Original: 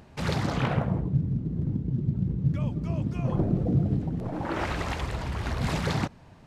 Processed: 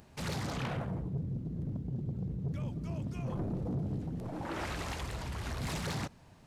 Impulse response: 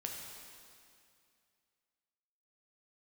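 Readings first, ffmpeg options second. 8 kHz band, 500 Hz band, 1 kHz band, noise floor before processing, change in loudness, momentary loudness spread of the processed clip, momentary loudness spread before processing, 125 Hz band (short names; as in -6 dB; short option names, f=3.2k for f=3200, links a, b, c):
n/a, -8.5 dB, -8.0 dB, -51 dBFS, -9.0 dB, 3 LU, 6 LU, -9.5 dB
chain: -af "highshelf=f=5.3k:g=11,asoftclip=type=tanh:threshold=-23.5dB,volume=-6.5dB"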